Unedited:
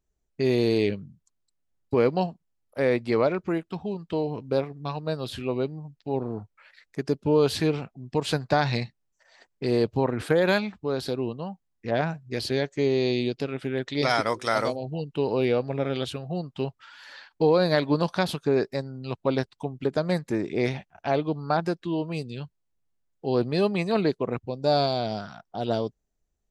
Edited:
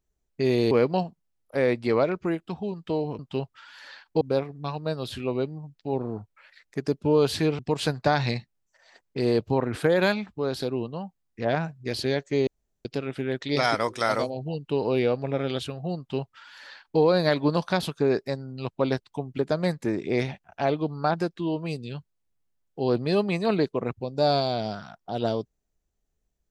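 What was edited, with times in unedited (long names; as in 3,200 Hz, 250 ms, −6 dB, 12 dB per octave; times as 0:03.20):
0:00.71–0:01.94: remove
0:07.80–0:08.05: remove
0:12.93–0:13.31: fill with room tone
0:16.44–0:17.46: duplicate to 0:04.42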